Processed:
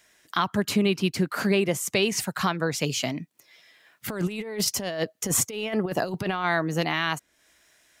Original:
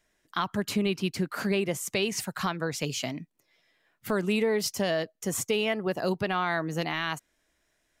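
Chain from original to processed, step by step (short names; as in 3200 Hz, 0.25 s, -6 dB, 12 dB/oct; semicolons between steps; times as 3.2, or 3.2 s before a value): HPF 51 Hz; 4.08–6.45 negative-ratio compressor -31 dBFS, ratio -0.5; mismatched tape noise reduction encoder only; gain +4.5 dB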